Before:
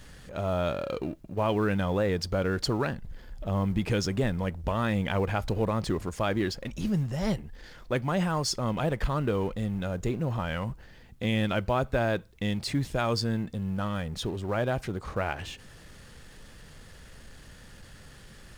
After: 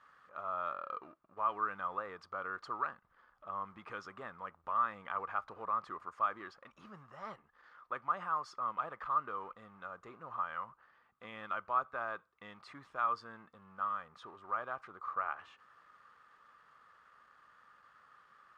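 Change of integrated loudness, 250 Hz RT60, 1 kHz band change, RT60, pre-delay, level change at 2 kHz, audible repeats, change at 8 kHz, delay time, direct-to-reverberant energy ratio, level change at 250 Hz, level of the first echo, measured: -9.5 dB, no reverb, -1.0 dB, no reverb, no reverb, -8.5 dB, no echo, under -25 dB, no echo, no reverb, -27.0 dB, no echo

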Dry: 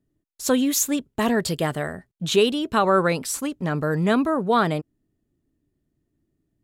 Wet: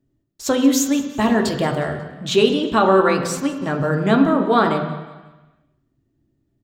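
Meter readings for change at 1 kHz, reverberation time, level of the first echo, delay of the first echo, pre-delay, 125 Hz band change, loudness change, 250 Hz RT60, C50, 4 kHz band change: +4.0 dB, 1.2 s, -18.0 dB, 181 ms, 3 ms, +3.0 dB, +4.0 dB, 1.1 s, 7.0 dB, +2.5 dB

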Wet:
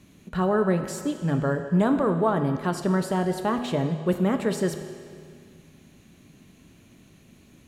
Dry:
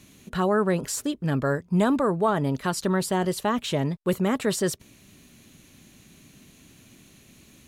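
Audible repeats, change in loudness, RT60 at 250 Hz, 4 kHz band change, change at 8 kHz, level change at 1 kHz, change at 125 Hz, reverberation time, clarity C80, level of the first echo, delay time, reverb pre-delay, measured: no echo, 0.0 dB, 2.2 s, -5.5 dB, -7.5 dB, -0.5 dB, +1.5 dB, 2.1 s, 9.5 dB, no echo, no echo, 6 ms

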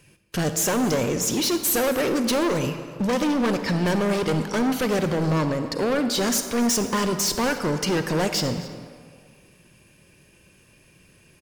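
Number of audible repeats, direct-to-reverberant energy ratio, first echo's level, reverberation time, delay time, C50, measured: 1, 7.5 dB, -20.0 dB, 1.9 s, 268 ms, 8.0 dB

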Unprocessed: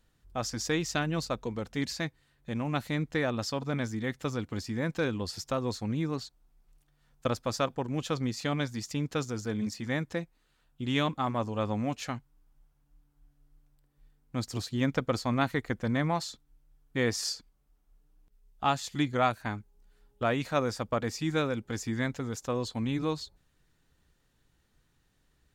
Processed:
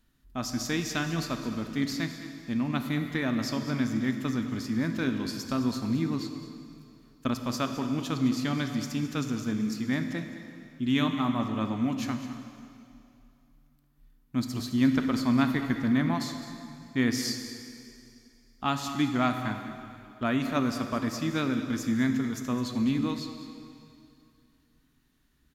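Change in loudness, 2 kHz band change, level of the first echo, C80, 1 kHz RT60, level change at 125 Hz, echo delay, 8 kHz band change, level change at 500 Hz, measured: +2.5 dB, +1.0 dB, -14.0 dB, 7.5 dB, 2.6 s, +0.5 dB, 210 ms, 0.0 dB, -4.0 dB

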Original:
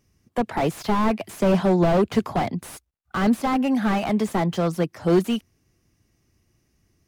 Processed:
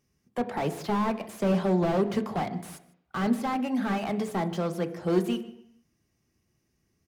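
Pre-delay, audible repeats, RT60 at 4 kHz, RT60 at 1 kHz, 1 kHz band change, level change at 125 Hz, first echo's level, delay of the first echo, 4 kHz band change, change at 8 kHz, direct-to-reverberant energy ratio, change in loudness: 3 ms, 1, 0.75 s, 0.80 s, -5.5 dB, -6.0 dB, -20.5 dB, 151 ms, -6.5 dB, -6.5 dB, 8.5 dB, -6.0 dB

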